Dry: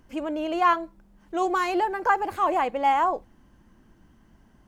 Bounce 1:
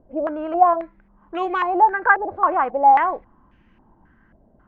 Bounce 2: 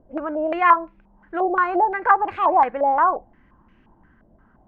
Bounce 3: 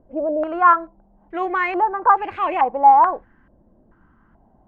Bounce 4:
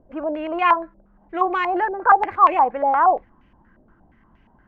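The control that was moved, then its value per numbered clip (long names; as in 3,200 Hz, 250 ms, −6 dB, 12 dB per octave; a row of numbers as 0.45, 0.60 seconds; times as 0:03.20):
low-pass on a step sequencer, speed: 3.7, 5.7, 2.3, 8.5 Hertz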